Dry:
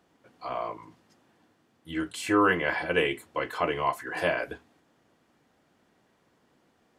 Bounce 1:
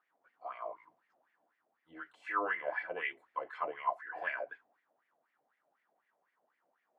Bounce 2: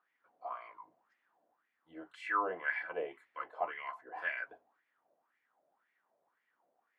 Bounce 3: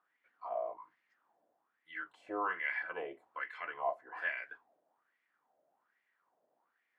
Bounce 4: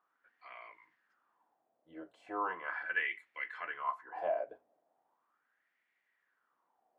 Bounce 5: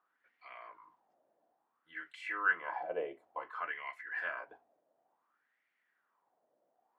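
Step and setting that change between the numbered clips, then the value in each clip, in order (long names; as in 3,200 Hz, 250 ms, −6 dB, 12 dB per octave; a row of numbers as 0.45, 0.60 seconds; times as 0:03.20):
LFO wah, speed: 4, 1.9, 1.2, 0.38, 0.57 Hertz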